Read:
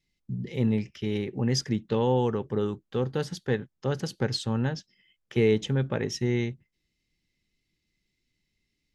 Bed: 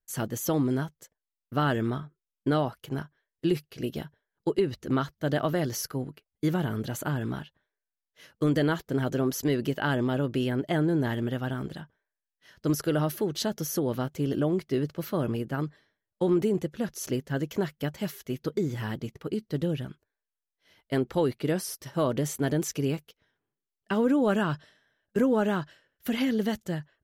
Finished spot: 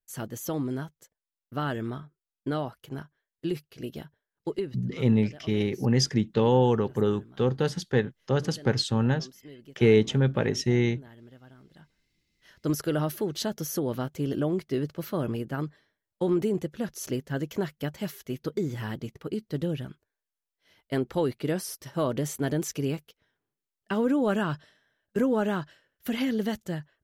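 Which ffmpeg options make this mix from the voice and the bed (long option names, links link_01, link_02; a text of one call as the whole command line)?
ffmpeg -i stem1.wav -i stem2.wav -filter_complex "[0:a]adelay=4450,volume=3dB[link_01];[1:a]volume=15.5dB,afade=type=out:start_time=4.56:duration=0.3:silence=0.149624,afade=type=in:start_time=11.71:duration=0.46:silence=0.1[link_02];[link_01][link_02]amix=inputs=2:normalize=0" out.wav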